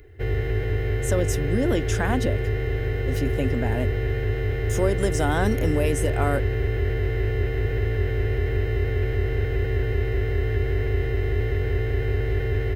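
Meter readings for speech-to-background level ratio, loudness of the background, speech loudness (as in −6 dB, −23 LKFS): −2.0 dB, −25.5 LKFS, −27.5 LKFS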